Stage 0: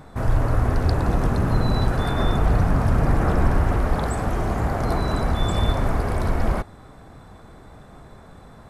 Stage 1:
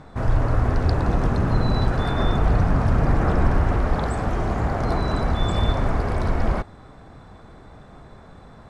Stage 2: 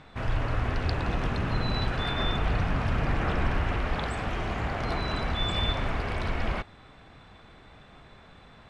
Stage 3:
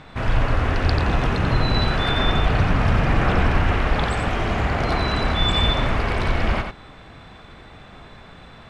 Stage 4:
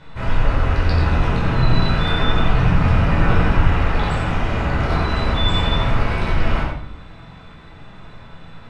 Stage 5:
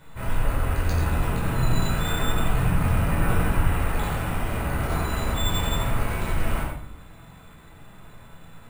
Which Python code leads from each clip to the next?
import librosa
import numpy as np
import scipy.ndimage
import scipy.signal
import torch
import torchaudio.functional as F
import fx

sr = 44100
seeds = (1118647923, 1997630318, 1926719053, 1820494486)

y1 = scipy.signal.sosfilt(scipy.signal.butter(2, 6500.0, 'lowpass', fs=sr, output='sos'), x)
y2 = fx.peak_eq(y1, sr, hz=2800.0, db=15.0, octaves=1.4)
y2 = y2 * librosa.db_to_amplitude(-8.5)
y3 = y2 + 10.0 ** (-6.0 / 20.0) * np.pad(y2, (int(89 * sr / 1000.0), 0))[:len(y2)]
y3 = y3 * librosa.db_to_amplitude(7.5)
y4 = fx.room_shoebox(y3, sr, seeds[0], volume_m3=570.0, walls='furnished', distance_m=4.8)
y4 = y4 * librosa.db_to_amplitude(-7.5)
y5 = np.repeat(y4[::4], 4)[:len(y4)]
y5 = y5 * librosa.db_to_amplitude(-6.5)